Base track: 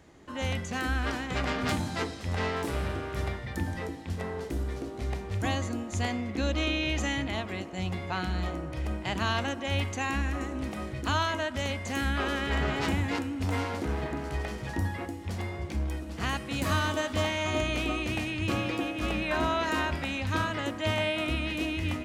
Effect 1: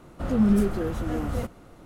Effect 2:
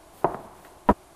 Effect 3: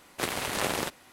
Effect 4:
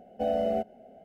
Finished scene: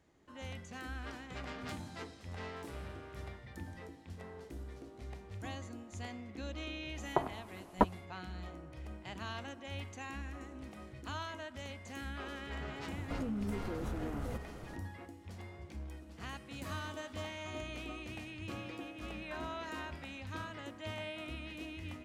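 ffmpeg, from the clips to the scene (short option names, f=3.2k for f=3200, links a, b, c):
-filter_complex "[0:a]volume=-14dB[a];[1:a]acompressor=threshold=-35dB:ratio=6:attack=3.2:release=140:knee=1:detection=peak[b];[2:a]atrim=end=1.15,asetpts=PTS-STARTPTS,volume=-8dB,afade=t=in:d=0.1,afade=t=out:st=1.05:d=0.1,adelay=6920[c];[b]atrim=end=1.85,asetpts=PTS-STARTPTS,volume=-1dB,afade=t=in:d=0.004:c=hsin,afade=t=out:st=1.846:d=0.004:c=hsin,adelay=12910[d];[a][c][d]amix=inputs=3:normalize=0"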